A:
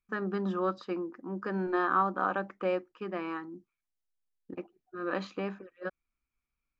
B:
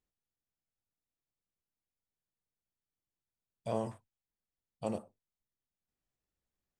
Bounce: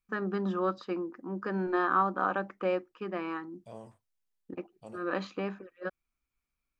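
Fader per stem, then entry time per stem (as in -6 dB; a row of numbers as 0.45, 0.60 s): +0.5, -12.0 dB; 0.00, 0.00 s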